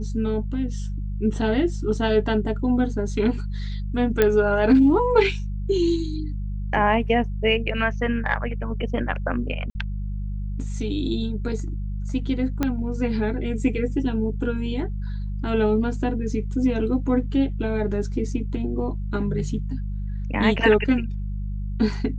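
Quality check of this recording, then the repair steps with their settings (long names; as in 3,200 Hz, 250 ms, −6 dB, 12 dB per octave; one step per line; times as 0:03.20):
mains hum 50 Hz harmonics 4 −28 dBFS
0:04.22: click −6 dBFS
0:09.70–0:09.75: drop-out 50 ms
0:12.63: click −9 dBFS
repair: click removal
hum removal 50 Hz, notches 4
repair the gap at 0:09.70, 50 ms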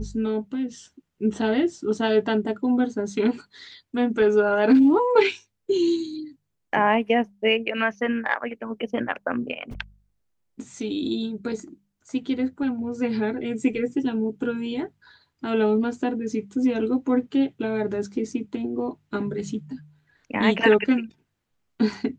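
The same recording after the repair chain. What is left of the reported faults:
0:12.63: click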